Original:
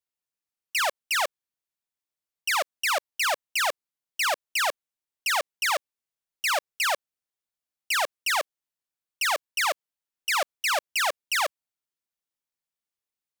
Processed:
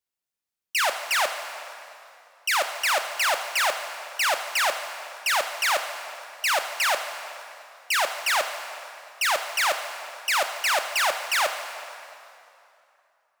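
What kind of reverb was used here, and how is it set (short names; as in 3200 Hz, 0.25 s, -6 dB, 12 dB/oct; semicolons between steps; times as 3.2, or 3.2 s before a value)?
plate-style reverb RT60 2.8 s, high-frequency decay 0.8×, DRR 6 dB; gain +1.5 dB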